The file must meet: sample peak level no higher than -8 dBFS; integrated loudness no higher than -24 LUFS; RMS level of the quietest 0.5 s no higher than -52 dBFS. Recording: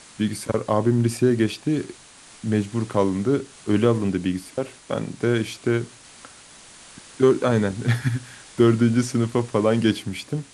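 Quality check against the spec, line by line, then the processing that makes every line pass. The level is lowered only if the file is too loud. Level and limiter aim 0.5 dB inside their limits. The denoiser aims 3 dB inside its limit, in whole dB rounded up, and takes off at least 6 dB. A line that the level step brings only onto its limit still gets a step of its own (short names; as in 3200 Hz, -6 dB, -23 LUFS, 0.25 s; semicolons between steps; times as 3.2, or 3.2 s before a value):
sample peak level -5.0 dBFS: fail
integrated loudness -22.5 LUFS: fail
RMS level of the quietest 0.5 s -47 dBFS: fail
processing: denoiser 6 dB, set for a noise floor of -47 dBFS; gain -2 dB; limiter -8.5 dBFS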